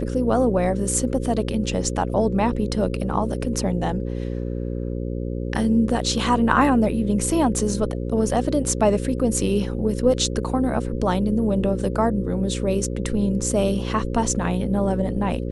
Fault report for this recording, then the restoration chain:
buzz 60 Hz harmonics 9 -27 dBFS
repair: de-hum 60 Hz, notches 9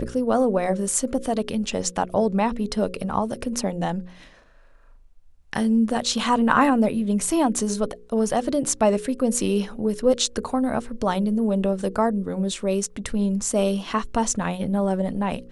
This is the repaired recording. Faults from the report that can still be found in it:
none

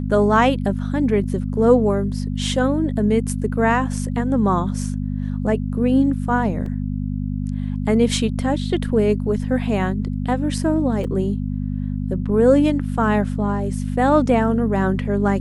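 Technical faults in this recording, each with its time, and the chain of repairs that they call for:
hum 50 Hz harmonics 5 -24 dBFS
6.66 gap 2.5 ms
11.04 gap 2.3 ms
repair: de-hum 50 Hz, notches 5; interpolate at 6.66, 2.5 ms; interpolate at 11.04, 2.3 ms

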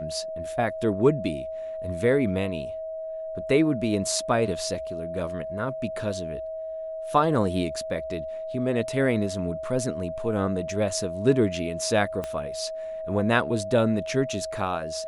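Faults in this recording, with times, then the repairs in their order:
tone 640 Hz -31 dBFS
12.24 pop -17 dBFS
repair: de-click; notch 640 Hz, Q 30

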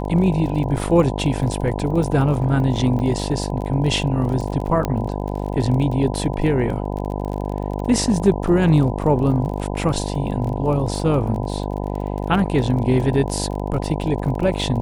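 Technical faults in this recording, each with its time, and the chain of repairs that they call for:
buzz 50 Hz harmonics 20 -25 dBFS
crackle 29/s -28 dBFS
2.99–3 gap 6.5 ms
4.85 pop -9 dBFS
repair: de-click; de-hum 50 Hz, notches 20; interpolate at 2.99, 6.5 ms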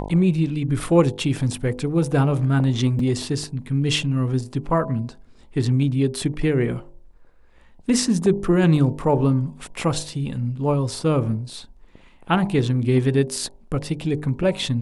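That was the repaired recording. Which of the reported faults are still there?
none

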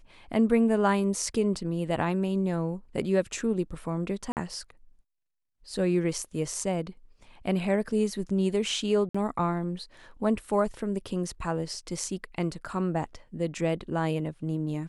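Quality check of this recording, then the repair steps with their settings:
4.32–4.37 gap 48 ms
9.09–9.14 gap 55 ms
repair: interpolate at 4.32, 48 ms; interpolate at 9.09, 55 ms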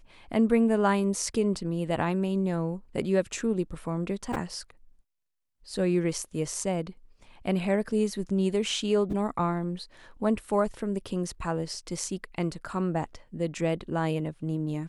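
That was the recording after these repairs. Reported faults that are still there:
none

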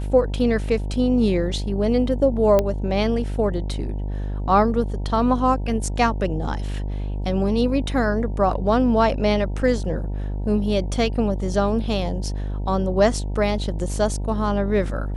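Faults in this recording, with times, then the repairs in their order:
buzz 50 Hz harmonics 19 -26 dBFS
2.59 pop -7 dBFS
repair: de-click; de-hum 50 Hz, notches 19

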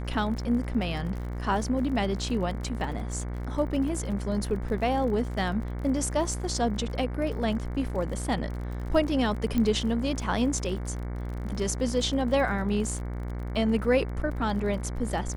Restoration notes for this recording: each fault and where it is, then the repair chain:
buzz 60 Hz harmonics 38 -33 dBFS
crackle 44/s -36 dBFS
9.58 pop -15 dBFS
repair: de-click; de-hum 60 Hz, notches 38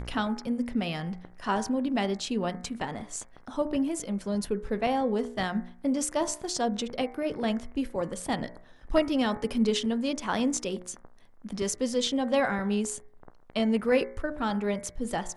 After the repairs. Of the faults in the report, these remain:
9.58 pop

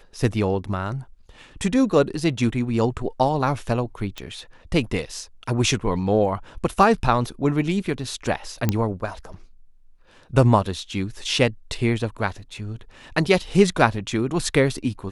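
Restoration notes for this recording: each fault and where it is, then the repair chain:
4.18 pop -17 dBFS
8.69 pop -6 dBFS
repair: de-click

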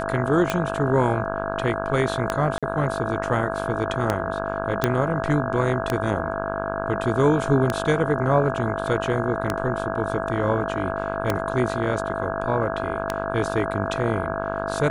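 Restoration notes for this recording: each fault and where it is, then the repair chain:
buzz 50 Hz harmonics 33 -29 dBFS
tick 33 1/3 rpm -7 dBFS
tone 660 Hz -29 dBFS
2.58–2.63 gap 46 ms
4.84 pop -5 dBFS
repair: de-click; de-hum 50 Hz, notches 33; notch 660 Hz, Q 30; interpolate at 2.58, 46 ms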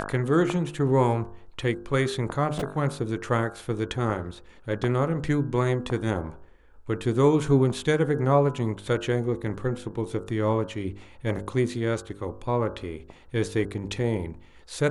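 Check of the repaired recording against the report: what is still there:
4.84 pop

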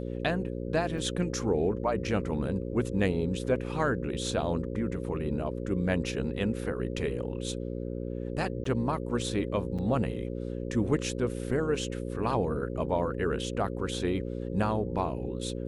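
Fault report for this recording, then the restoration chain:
buzz 60 Hz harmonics 9 -35 dBFS
0.98 gap 2 ms
8.64–8.65 gap 14 ms
9.78–9.79 gap 6.3 ms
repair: de-hum 60 Hz, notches 9; interpolate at 0.98, 2 ms; interpolate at 8.64, 14 ms; interpolate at 9.78, 6.3 ms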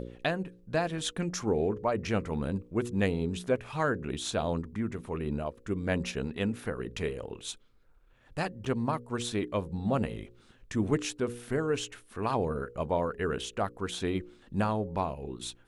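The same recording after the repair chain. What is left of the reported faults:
none

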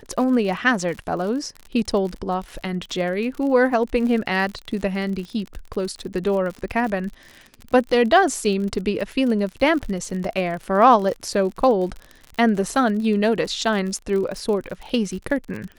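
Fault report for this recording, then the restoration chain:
crackle 53/s -29 dBFS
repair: de-click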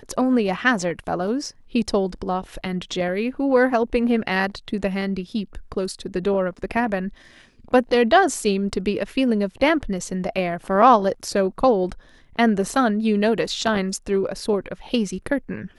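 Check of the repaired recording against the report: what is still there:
none

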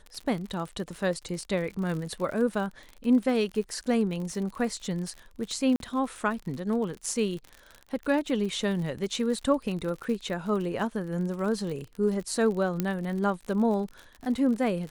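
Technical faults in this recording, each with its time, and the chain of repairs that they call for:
crackle 56/s -34 dBFS
5.76–5.8 gap 42 ms
12.8 pop -13 dBFS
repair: de-click; interpolate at 5.76, 42 ms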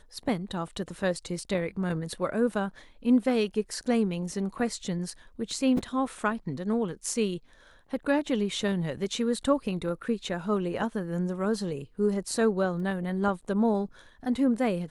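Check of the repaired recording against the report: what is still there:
12.8 pop

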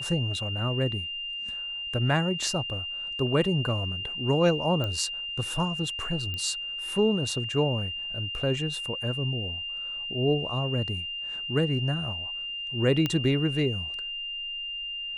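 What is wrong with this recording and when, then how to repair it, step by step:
tone 2800 Hz -32 dBFS
4.84 pop -18 dBFS
6.34 pop -21 dBFS
13.06 pop -13 dBFS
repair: de-click; notch 2800 Hz, Q 30

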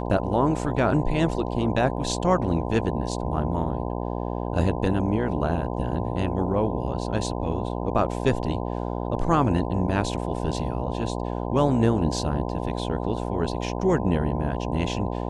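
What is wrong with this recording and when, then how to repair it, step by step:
buzz 60 Hz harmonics 17 -29 dBFS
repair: de-hum 60 Hz, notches 17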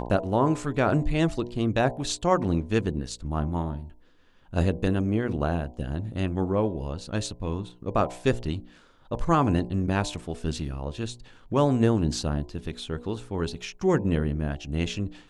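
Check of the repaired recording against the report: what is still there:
none

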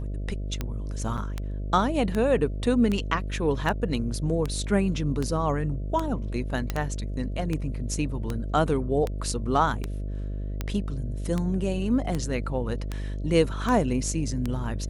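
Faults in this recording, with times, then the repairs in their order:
buzz 50 Hz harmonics 13 -31 dBFS
tick 78 rpm -15 dBFS
1.17–1.18 gap 7.3 ms
6.7 pop -13 dBFS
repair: de-click; de-hum 50 Hz, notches 13; interpolate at 1.17, 7.3 ms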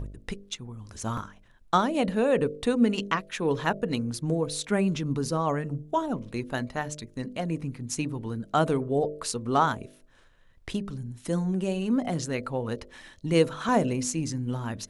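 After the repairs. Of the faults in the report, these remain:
none

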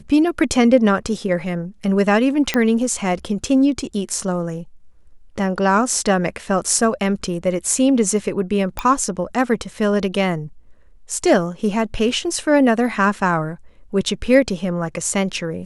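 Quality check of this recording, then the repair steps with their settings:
2.54 pop -4 dBFS
8.79 pop -8 dBFS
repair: de-click

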